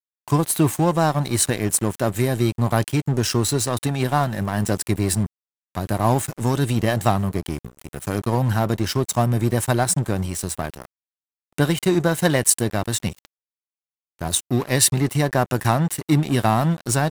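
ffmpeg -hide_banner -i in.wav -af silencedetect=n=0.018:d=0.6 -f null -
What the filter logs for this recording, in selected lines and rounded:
silence_start: 10.85
silence_end: 11.58 | silence_duration: 0.73
silence_start: 13.25
silence_end: 14.19 | silence_duration: 0.94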